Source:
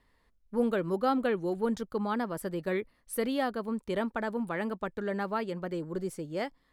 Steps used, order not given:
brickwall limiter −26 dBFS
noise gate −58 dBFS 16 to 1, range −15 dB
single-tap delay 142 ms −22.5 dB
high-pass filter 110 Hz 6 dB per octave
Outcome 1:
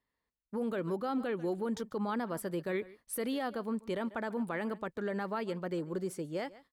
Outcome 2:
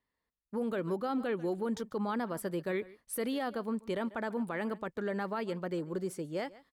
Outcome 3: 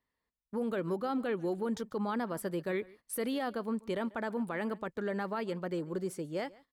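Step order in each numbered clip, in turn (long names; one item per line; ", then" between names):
single-tap delay, then brickwall limiter, then noise gate, then high-pass filter
single-tap delay, then noise gate, then high-pass filter, then brickwall limiter
high-pass filter, then brickwall limiter, then noise gate, then single-tap delay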